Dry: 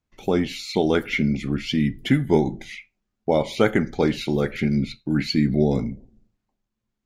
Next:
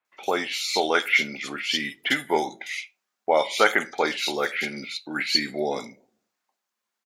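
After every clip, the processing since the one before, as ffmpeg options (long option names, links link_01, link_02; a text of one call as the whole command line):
ffmpeg -i in.wav -filter_complex "[0:a]highpass=860,acrossover=split=3000[link_01][link_02];[link_02]adelay=50[link_03];[link_01][link_03]amix=inputs=2:normalize=0,volume=8dB" out.wav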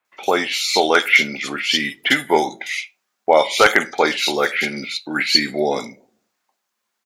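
ffmpeg -i in.wav -af "aeval=exprs='0.398*(abs(mod(val(0)/0.398+3,4)-2)-1)':channel_layout=same,volume=7dB" out.wav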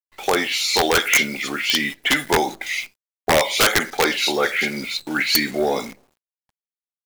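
ffmpeg -i in.wav -af "aeval=exprs='(mod(1.78*val(0)+1,2)-1)/1.78':channel_layout=same,acrusher=bits=7:dc=4:mix=0:aa=0.000001,acontrast=87,volume=-7dB" out.wav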